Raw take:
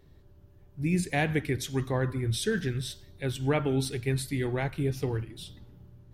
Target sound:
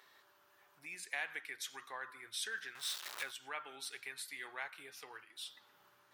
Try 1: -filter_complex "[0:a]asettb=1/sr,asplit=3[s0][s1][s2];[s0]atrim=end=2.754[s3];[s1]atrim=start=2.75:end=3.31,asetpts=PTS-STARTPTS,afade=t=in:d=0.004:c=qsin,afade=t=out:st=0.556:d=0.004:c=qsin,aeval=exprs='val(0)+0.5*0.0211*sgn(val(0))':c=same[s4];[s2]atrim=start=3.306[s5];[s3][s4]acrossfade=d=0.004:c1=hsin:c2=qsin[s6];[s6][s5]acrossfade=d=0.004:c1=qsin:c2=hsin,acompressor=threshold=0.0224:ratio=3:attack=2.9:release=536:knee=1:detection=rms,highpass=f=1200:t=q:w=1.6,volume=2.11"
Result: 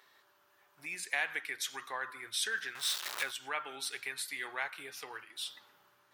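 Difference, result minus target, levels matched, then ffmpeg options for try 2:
compression: peak gain reduction -6.5 dB
-filter_complex "[0:a]asettb=1/sr,asplit=3[s0][s1][s2];[s0]atrim=end=2.754[s3];[s1]atrim=start=2.75:end=3.31,asetpts=PTS-STARTPTS,afade=t=in:d=0.004:c=qsin,afade=t=out:st=0.556:d=0.004:c=qsin,aeval=exprs='val(0)+0.5*0.0211*sgn(val(0))':c=same[s4];[s2]atrim=start=3.306[s5];[s3][s4]acrossfade=d=0.004:c1=hsin:c2=qsin[s6];[s6][s5]acrossfade=d=0.004:c1=qsin:c2=hsin,acompressor=threshold=0.00708:ratio=3:attack=2.9:release=536:knee=1:detection=rms,highpass=f=1200:t=q:w=1.6,volume=2.11"

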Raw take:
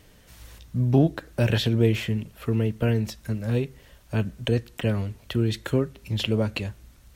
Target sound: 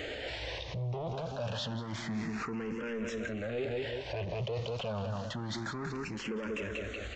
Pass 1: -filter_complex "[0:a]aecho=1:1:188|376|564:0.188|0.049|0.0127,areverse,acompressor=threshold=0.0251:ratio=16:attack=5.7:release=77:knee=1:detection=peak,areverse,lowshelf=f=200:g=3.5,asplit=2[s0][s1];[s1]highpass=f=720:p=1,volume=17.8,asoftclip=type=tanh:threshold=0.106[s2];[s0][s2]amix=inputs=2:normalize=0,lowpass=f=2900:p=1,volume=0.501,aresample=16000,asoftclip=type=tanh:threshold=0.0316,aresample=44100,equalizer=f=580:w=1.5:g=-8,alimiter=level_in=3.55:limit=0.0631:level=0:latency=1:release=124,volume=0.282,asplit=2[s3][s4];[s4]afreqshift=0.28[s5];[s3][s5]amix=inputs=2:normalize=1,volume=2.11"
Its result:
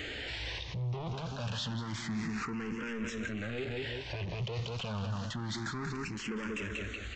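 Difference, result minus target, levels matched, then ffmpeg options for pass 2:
500 Hz band -5.0 dB; saturation: distortion +8 dB
-filter_complex "[0:a]aecho=1:1:188|376|564:0.188|0.049|0.0127,areverse,acompressor=threshold=0.0251:ratio=16:attack=5.7:release=77:knee=1:detection=peak,areverse,lowshelf=f=200:g=3.5,asplit=2[s0][s1];[s1]highpass=f=720:p=1,volume=17.8,asoftclip=type=tanh:threshold=0.106[s2];[s0][s2]amix=inputs=2:normalize=0,lowpass=f=2900:p=1,volume=0.501,aresample=16000,asoftclip=type=tanh:threshold=0.0631,aresample=44100,equalizer=f=580:w=1.5:g=4,alimiter=level_in=3.55:limit=0.0631:level=0:latency=1:release=124,volume=0.282,asplit=2[s3][s4];[s4]afreqshift=0.28[s5];[s3][s5]amix=inputs=2:normalize=1,volume=2.11"

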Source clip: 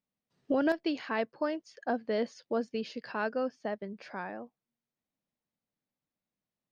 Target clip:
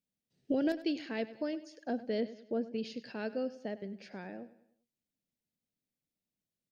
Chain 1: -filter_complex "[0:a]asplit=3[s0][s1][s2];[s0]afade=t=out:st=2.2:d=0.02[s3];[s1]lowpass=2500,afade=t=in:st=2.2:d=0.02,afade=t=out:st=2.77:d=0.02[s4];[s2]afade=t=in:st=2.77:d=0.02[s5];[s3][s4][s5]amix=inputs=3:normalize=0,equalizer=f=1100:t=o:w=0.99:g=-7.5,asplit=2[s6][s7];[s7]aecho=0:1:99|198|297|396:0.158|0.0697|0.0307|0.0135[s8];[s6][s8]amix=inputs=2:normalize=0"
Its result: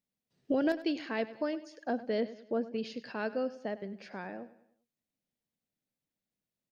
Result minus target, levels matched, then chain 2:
1 kHz band +4.0 dB
-filter_complex "[0:a]asplit=3[s0][s1][s2];[s0]afade=t=out:st=2.2:d=0.02[s3];[s1]lowpass=2500,afade=t=in:st=2.2:d=0.02,afade=t=out:st=2.77:d=0.02[s4];[s2]afade=t=in:st=2.77:d=0.02[s5];[s3][s4][s5]amix=inputs=3:normalize=0,equalizer=f=1100:t=o:w=0.99:g=-18.5,asplit=2[s6][s7];[s7]aecho=0:1:99|198|297|396:0.158|0.0697|0.0307|0.0135[s8];[s6][s8]amix=inputs=2:normalize=0"

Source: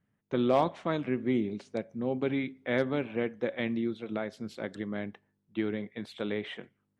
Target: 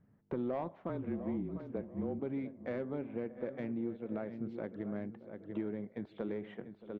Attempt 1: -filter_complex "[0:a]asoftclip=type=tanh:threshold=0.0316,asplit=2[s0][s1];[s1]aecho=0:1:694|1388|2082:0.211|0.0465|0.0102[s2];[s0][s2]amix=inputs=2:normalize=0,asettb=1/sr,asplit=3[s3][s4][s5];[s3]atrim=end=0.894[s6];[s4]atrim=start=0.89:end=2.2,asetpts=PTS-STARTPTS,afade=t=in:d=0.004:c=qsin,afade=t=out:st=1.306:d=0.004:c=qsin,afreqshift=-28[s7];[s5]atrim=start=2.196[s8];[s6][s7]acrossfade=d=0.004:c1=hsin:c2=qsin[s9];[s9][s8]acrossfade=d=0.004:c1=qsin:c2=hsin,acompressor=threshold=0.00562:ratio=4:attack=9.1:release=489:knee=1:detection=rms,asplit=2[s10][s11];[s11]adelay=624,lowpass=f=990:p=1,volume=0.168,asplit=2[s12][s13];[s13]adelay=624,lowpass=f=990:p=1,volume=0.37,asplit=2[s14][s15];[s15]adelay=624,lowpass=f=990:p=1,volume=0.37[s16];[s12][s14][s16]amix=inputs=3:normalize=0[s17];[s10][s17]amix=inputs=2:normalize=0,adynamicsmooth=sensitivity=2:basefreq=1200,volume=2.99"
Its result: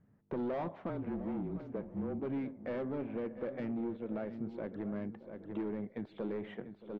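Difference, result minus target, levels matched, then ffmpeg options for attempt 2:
saturation: distortion +12 dB
-filter_complex "[0:a]asoftclip=type=tanh:threshold=0.119,asplit=2[s0][s1];[s1]aecho=0:1:694|1388|2082:0.211|0.0465|0.0102[s2];[s0][s2]amix=inputs=2:normalize=0,asettb=1/sr,asplit=3[s3][s4][s5];[s3]atrim=end=0.894[s6];[s4]atrim=start=0.89:end=2.2,asetpts=PTS-STARTPTS,afade=t=in:d=0.004:c=qsin,afade=t=out:st=1.306:d=0.004:c=qsin,afreqshift=-28[s7];[s5]atrim=start=2.196[s8];[s6][s7]acrossfade=d=0.004:c1=hsin:c2=qsin[s9];[s9][s8]acrossfade=d=0.004:c1=qsin:c2=hsin,acompressor=threshold=0.00562:ratio=4:attack=9.1:release=489:knee=1:detection=rms,asplit=2[s10][s11];[s11]adelay=624,lowpass=f=990:p=1,volume=0.168,asplit=2[s12][s13];[s13]adelay=624,lowpass=f=990:p=1,volume=0.37,asplit=2[s14][s15];[s15]adelay=624,lowpass=f=990:p=1,volume=0.37[s16];[s12][s14][s16]amix=inputs=3:normalize=0[s17];[s10][s17]amix=inputs=2:normalize=0,adynamicsmooth=sensitivity=2:basefreq=1200,volume=2.99"

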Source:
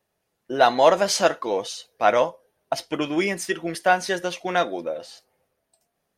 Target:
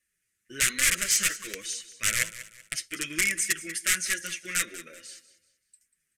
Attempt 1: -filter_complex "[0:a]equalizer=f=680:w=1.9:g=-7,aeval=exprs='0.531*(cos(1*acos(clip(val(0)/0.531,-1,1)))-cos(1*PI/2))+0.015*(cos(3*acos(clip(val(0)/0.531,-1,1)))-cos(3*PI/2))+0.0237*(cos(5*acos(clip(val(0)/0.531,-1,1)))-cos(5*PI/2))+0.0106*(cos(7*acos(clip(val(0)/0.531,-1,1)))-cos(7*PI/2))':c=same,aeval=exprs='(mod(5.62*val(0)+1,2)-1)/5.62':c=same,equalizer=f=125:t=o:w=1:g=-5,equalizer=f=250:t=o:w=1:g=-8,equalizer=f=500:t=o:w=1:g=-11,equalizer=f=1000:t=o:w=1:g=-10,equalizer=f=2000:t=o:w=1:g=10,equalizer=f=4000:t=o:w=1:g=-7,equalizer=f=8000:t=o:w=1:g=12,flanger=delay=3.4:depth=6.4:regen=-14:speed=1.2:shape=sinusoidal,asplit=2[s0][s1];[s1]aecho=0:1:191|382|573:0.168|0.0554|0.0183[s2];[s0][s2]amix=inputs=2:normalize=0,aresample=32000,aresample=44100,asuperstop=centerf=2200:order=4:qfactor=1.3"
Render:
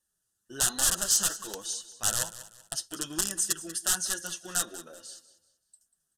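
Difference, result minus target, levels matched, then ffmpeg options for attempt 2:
2 kHz band -9.5 dB
-filter_complex "[0:a]equalizer=f=680:w=1.9:g=-7,aeval=exprs='0.531*(cos(1*acos(clip(val(0)/0.531,-1,1)))-cos(1*PI/2))+0.015*(cos(3*acos(clip(val(0)/0.531,-1,1)))-cos(3*PI/2))+0.0237*(cos(5*acos(clip(val(0)/0.531,-1,1)))-cos(5*PI/2))+0.0106*(cos(7*acos(clip(val(0)/0.531,-1,1)))-cos(7*PI/2))':c=same,aeval=exprs='(mod(5.62*val(0)+1,2)-1)/5.62':c=same,equalizer=f=125:t=o:w=1:g=-5,equalizer=f=250:t=o:w=1:g=-8,equalizer=f=500:t=o:w=1:g=-11,equalizer=f=1000:t=o:w=1:g=-10,equalizer=f=2000:t=o:w=1:g=10,equalizer=f=4000:t=o:w=1:g=-7,equalizer=f=8000:t=o:w=1:g=12,flanger=delay=3.4:depth=6.4:regen=-14:speed=1.2:shape=sinusoidal,asplit=2[s0][s1];[s1]aecho=0:1:191|382|573:0.168|0.0554|0.0183[s2];[s0][s2]amix=inputs=2:normalize=0,aresample=32000,aresample=44100,asuperstop=centerf=820:order=4:qfactor=1.3"

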